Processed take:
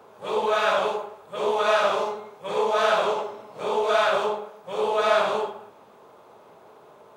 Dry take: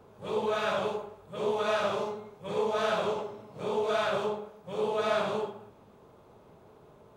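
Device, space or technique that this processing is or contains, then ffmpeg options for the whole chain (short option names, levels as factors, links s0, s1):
filter by subtraction: -filter_complex "[0:a]asplit=2[s0][s1];[s1]lowpass=840,volume=-1[s2];[s0][s2]amix=inputs=2:normalize=0,volume=2.24"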